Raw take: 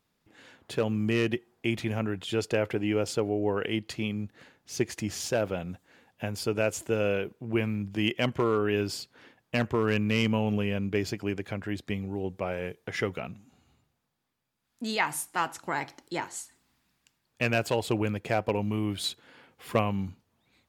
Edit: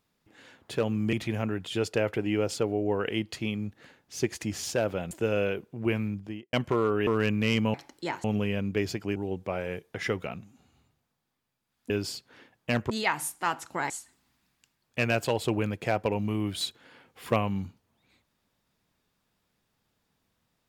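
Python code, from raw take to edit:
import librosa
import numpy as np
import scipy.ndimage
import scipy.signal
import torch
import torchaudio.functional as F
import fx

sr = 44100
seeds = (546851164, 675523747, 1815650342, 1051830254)

y = fx.studio_fade_out(x, sr, start_s=7.72, length_s=0.49)
y = fx.edit(y, sr, fx.cut(start_s=1.13, length_s=0.57),
    fx.cut(start_s=5.68, length_s=1.11),
    fx.move(start_s=8.75, length_s=1.0, to_s=14.83),
    fx.cut(start_s=11.34, length_s=0.75),
    fx.move(start_s=15.83, length_s=0.5, to_s=10.42), tone=tone)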